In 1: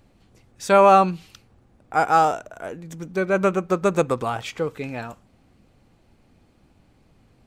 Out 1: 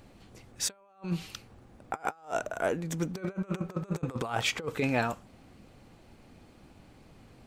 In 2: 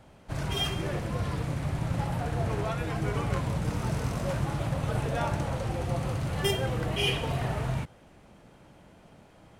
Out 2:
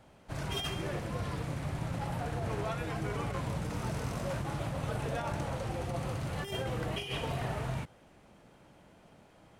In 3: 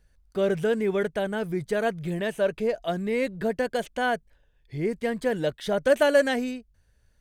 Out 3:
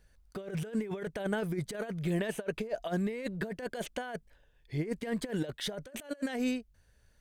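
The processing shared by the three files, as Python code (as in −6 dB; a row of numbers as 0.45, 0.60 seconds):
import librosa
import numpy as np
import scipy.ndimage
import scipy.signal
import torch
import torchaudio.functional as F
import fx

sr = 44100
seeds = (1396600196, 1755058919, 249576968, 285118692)

y = fx.low_shelf(x, sr, hz=170.0, db=-4.0)
y = fx.over_compress(y, sr, threshold_db=-30.0, ratio=-0.5)
y = y * 10.0 ** (-3.5 / 20.0)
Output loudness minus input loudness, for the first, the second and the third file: −12.5, −5.5, −9.5 LU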